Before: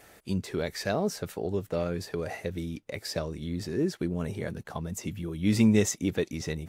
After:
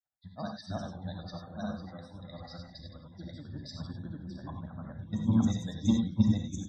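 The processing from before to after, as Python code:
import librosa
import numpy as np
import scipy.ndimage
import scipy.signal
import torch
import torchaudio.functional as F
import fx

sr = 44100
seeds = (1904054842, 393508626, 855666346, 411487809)

p1 = fx.reverse_delay(x, sr, ms=111, wet_db=-3.0)
p2 = fx.peak_eq(p1, sr, hz=3700.0, db=11.0, octaves=0.4)
p3 = fx.fixed_phaser(p2, sr, hz=1000.0, stages=4)
p4 = p3 + fx.echo_single(p3, sr, ms=257, db=-17.5, dry=0)
p5 = fx.granulator(p4, sr, seeds[0], grain_ms=100.0, per_s=20.0, spray_ms=756.0, spread_st=0)
p6 = fx.sample_hold(p5, sr, seeds[1], rate_hz=8800.0, jitter_pct=0)
p7 = p5 + F.gain(torch.from_numpy(p6), -9.0).numpy()
p8 = fx.spec_topn(p7, sr, count=64)
p9 = fx.high_shelf(p8, sr, hz=6000.0, db=-7.5)
p10 = fx.rev_gated(p9, sr, seeds[2], gate_ms=120, shape='rising', drr_db=3.0)
p11 = fx.band_widen(p10, sr, depth_pct=100)
y = F.gain(torch.from_numpy(p11), -6.5).numpy()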